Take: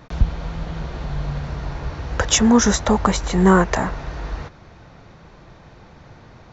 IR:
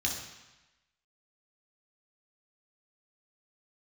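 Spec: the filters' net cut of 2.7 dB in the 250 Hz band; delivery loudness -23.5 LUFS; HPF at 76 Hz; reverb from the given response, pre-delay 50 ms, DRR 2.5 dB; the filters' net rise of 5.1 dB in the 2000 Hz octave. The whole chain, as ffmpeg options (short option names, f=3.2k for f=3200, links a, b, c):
-filter_complex "[0:a]highpass=76,equalizer=f=250:t=o:g=-3.5,equalizer=f=2k:t=o:g=7,asplit=2[a][b];[1:a]atrim=start_sample=2205,adelay=50[c];[b][c]afir=irnorm=-1:irlink=0,volume=-8.5dB[d];[a][d]amix=inputs=2:normalize=0,volume=-5.5dB"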